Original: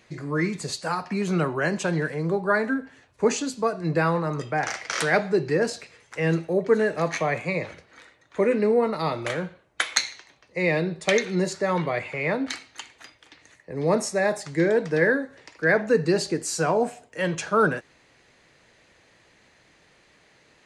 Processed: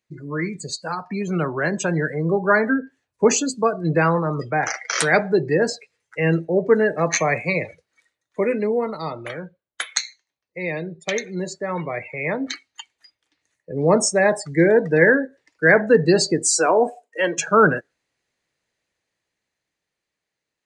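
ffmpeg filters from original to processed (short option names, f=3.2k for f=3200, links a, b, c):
-filter_complex "[0:a]asettb=1/sr,asplit=3[a][b][c];[a]atrim=end=7.114[d];[b]atrim=start=7.11:end=8.97,asetpts=PTS-STARTPTS,afade=t=in:d=0.004:c=qsin,afade=t=out:st=1.856:d=0.004:c=qsin,highshelf=f=4.9k:g=10[e];[c]atrim=start=8.966[f];[d][e]acrossfade=d=0.004:c1=hsin:c2=qsin[g];[g][f]acrossfade=d=0.004:c1=qsin:c2=hsin,asettb=1/sr,asplit=3[h][i][j];[h]atrim=end=16.534[k];[i]atrim=start=16.53:end=17.38,asetpts=PTS-STARTPTS,afade=t=in:d=0.004:c=qsin,afade=t=out:st=0.846:d=0.004:c=qsin,highpass=f=260:w=0.5412,highpass=f=260:w=1.3066[l];[j]atrim=start=17.376[m];[k][l]acrossfade=d=0.004:c1=hsin:c2=qsin[n];[n][m]acrossfade=d=0.004:c1=qsin:c2=hsin,afftdn=nr=26:nf=-34,highshelf=f=5.5k:g=10.5,dynaudnorm=f=450:g=9:m=11.5dB,volume=-1dB"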